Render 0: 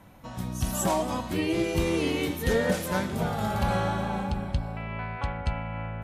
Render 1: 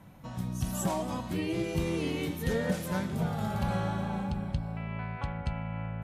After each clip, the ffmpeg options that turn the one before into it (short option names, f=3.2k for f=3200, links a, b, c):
-filter_complex "[0:a]equalizer=f=150:w=1.5:g=8,asplit=2[a][b];[b]acompressor=threshold=-32dB:ratio=6,volume=-2.5dB[c];[a][c]amix=inputs=2:normalize=0,volume=-8.5dB"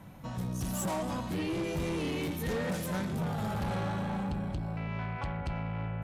-af "asoftclip=type=tanh:threshold=-32dB,volume=3dB"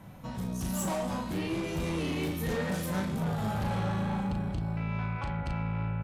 -filter_complex "[0:a]asplit=2[a][b];[b]adelay=37,volume=-5dB[c];[a][c]amix=inputs=2:normalize=0"